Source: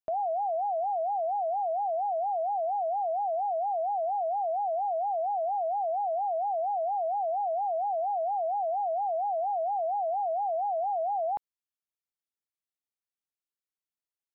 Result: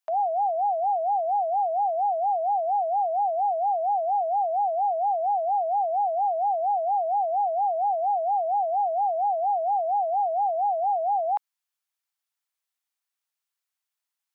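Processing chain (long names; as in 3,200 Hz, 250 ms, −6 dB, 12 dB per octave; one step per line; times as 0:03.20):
high-pass filter 740 Hz 24 dB per octave
level +8 dB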